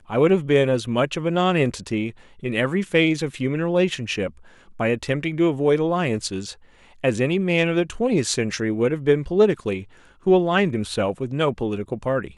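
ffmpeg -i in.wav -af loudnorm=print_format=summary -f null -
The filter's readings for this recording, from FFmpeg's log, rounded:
Input Integrated:    -22.1 LUFS
Input True Peak:      -5.1 dBTP
Input LRA:             2.1 LU
Input Threshold:     -32.4 LUFS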